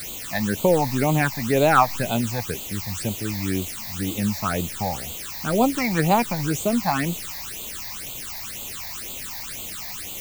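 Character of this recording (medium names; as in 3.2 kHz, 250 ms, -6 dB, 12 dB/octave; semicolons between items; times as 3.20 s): a quantiser's noise floor 6-bit, dither triangular; phasing stages 8, 2 Hz, lowest notch 390–1700 Hz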